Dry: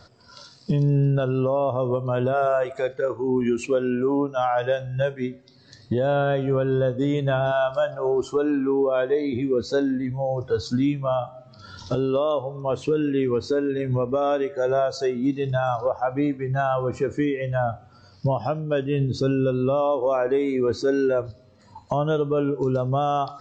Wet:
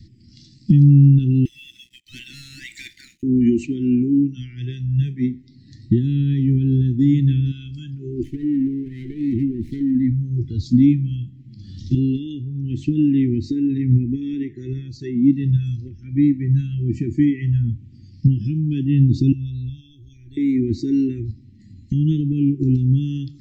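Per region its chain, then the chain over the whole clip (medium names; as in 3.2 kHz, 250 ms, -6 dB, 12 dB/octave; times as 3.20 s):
1.45–3.23 s: brick-wall FIR high-pass 1.2 kHz + treble shelf 3.1 kHz +6.5 dB + waveshaping leveller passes 3
8.23–9.95 s: compression 5:1, threshold -24 dBFS + treble shelf 5.7 kHz -11 dB + sliding maximum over 9 samples
13.77–15.60 s: treble shelf 5.4 kHz -10.5 dB + band-stop 3.9 kHz, Q 19
19.32–20.37 s: FFT filter 100 Hz 0 dB, 230 Hz -26 dB, 1.2 kHz -29 dB, 2.5 kHz -14 dB, 3.7 kHz +3 dB, 5.4 kHz -4 dB, 9.4 kHz +11 dB + tape noise reduction on one side only decoder only
whole clip: Chebyshev band-stop 340–1900 Hz, order 5; tilt shelf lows +8 dB, about 710 Hz; trim +3.5 dB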